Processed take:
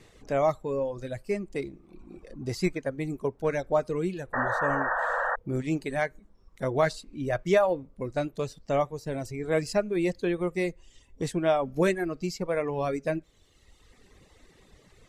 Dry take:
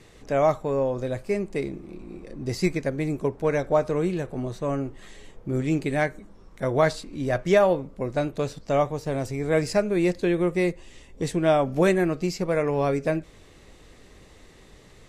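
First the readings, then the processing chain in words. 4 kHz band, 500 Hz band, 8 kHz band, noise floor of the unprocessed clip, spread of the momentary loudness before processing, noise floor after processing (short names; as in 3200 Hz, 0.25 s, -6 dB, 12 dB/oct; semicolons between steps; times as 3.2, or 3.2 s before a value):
-3.5 dB, -4.0 dB, -3.5 dB, -51 dBFS, 10 LU, -60 dBFS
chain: reverb removal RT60 1.4 s; painted sound noise, 4.33–5.36, 470–1900 Hz -25 dBFS; gain -3 dB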